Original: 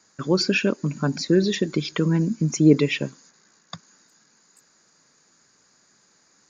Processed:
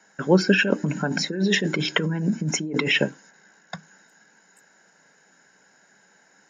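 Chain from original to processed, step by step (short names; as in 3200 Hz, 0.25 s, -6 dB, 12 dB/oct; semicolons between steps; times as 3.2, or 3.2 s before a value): 0.54–3.04 negative-ratio compressor -26 dBFS, ratio -1; low shelf 87 Hz -10 dB; reverb RT60 0.15 s, pre-delay 3 ms, DRR 16 dB; gain -1.5 dB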